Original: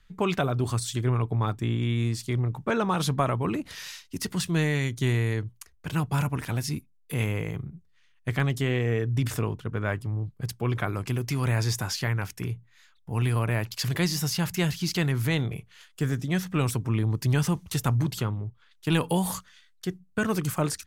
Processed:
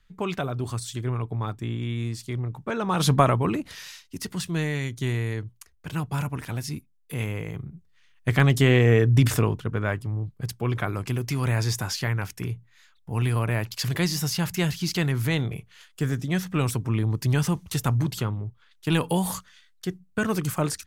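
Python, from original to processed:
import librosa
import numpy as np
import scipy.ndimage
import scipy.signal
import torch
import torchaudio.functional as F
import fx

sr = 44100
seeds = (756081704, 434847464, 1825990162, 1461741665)

y = fx.gain(x, sr, db=fx.line((2.78, -3.0), (3.14, 7.5), (3.87, -2.0), (7.45, -2.0), (8.6, 8.0), (9.18, 8.0), (9.99, 1.0)))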